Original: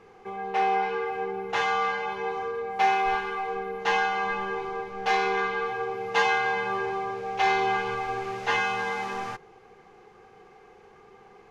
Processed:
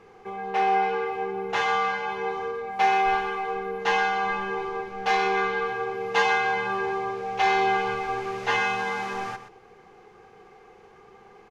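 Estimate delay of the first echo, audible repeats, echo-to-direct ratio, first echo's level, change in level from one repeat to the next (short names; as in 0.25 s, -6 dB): 0.124 s, 1, -11.5 dB, -11.5 dB, no steady repeat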